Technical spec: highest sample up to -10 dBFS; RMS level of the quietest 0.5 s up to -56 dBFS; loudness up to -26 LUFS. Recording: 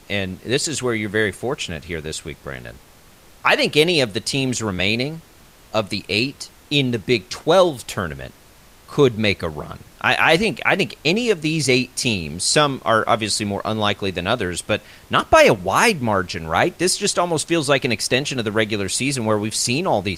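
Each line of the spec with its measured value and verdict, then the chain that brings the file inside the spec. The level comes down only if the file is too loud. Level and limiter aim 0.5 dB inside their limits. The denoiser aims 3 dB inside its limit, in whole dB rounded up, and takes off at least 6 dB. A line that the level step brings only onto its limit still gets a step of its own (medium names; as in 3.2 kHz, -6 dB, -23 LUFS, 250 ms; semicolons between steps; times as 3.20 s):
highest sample -2.0 dBFS: fail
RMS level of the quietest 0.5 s -48 dBFS: fail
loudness -19.5 LUFS: fail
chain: noise reduction 6 dB, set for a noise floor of -48 dBFS; trim -7 dB; peak limiter -10.5 dBFS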